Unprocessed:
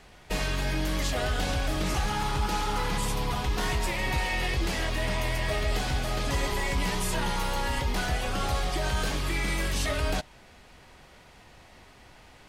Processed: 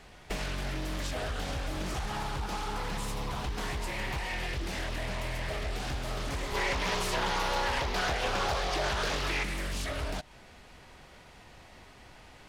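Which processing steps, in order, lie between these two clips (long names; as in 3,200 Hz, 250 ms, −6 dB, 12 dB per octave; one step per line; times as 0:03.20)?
downward compressor 5 to 1, threshold −31 dBFS, peak gain reduction 8 dB
gain on a spectral selection 0:06.54–0:09.43, 350–6,500 Hz +7 dB
highs frequency-modulated by the lows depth 0.61 ms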